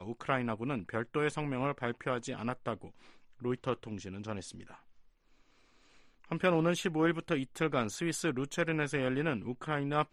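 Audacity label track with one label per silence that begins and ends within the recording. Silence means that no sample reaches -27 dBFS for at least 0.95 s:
4.330000	6.320000	silence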